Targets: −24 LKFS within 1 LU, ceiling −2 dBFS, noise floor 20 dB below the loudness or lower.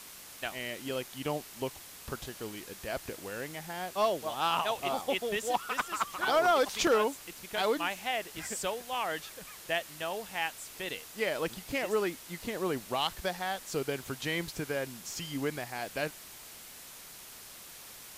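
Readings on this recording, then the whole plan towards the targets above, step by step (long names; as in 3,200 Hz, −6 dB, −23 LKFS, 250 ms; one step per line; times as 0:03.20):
number of dropouts 1; longest dropout 2.4 ms; background noise floor −49 dBFS; target noise floor −54 dBFS; integrated loudness −33.5 LKFS; sample peak −18.0 dBFS; target loudness −24.0 LKFS
→ repair the gap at 0:06.87, 2.4 ms
broadband denoise 6 dB, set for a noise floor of −49 dBFS
level +9.5 dB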